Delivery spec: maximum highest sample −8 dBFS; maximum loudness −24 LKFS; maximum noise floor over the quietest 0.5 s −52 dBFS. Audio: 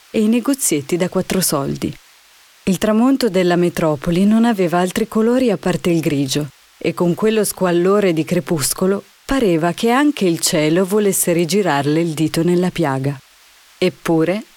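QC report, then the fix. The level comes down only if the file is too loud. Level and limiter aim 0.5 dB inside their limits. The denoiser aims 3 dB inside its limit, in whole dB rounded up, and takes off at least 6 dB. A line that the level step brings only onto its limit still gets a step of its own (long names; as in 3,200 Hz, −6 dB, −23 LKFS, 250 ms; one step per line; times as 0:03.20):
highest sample −3.5 dBFS: out of spec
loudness −16.5 LKFS: out of spec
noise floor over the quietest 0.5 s −49 dBFS: out of spec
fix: level −8 dB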